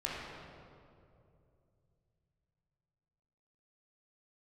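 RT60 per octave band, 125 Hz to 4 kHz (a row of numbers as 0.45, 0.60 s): 4.3, 3.1, 2.9, 2.3, 1.7, 1.4 s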